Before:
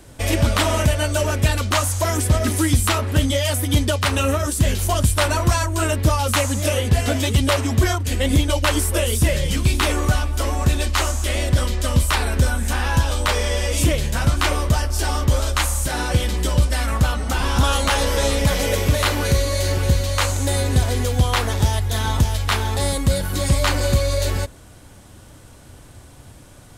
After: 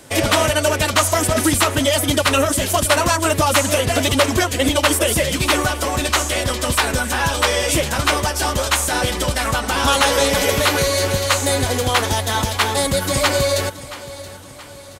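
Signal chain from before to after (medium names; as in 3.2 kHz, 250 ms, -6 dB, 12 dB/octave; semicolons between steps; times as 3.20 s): high-pass 310 Hz 6 dB/octave; time stretch by phase-locked vocoder 0.56×; on a send: feedback delay 675 ms, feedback 49%, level -16.5 dB; on the sum: trim +7 dB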